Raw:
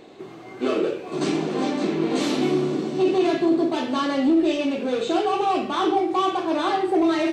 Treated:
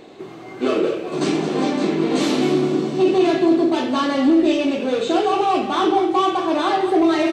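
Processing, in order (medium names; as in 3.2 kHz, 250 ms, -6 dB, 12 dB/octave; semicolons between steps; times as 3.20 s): delay 209 ms -11.5 dB; trim +3.5 dB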